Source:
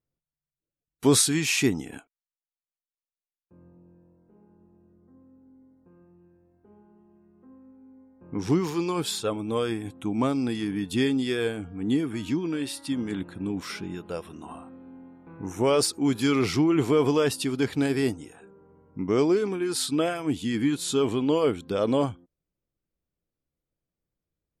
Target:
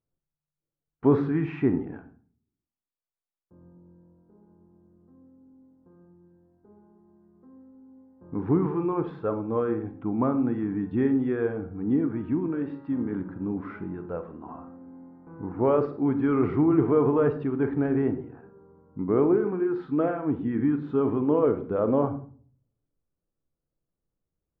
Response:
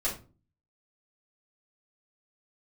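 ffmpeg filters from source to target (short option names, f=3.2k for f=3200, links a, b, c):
-filter_complex "[0:a]lowpass=f=1.5k:w=0.5412,lowpass=f=1.5k:w=1.3066,asplit=2[a][b];[1:a]atrim=start_sample=2205,asetrate=30870,aresample=44100,adelay=34[c];[b][c]afir=irnorm=-1:irlink=0,volume=-18dB[d];[a][d]amix=inputs=2:normalize=0"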